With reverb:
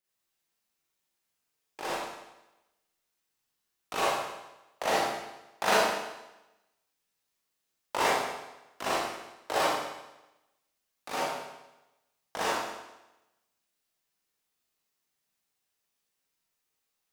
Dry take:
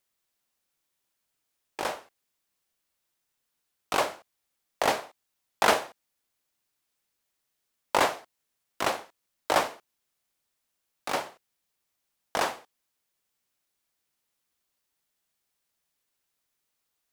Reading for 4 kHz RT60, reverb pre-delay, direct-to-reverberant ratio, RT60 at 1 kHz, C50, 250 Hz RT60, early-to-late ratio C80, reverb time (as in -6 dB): 0.95 s, 34 ms, -8.0 dB, 1.0 s, -3.5 dB, 0.95 s, 0.5 dB, 1.0 s